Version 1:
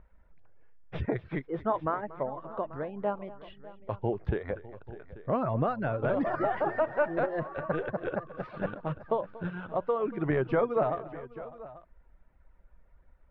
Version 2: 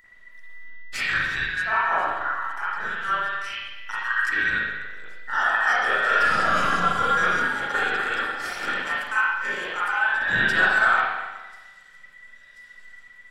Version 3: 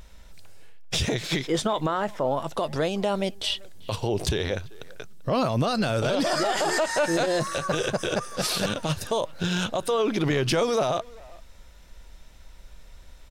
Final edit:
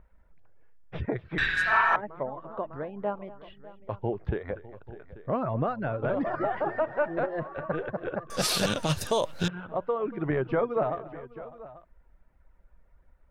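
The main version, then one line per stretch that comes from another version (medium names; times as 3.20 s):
1
1.38–1.96 s: from 2
8.30–9.48 s: from 3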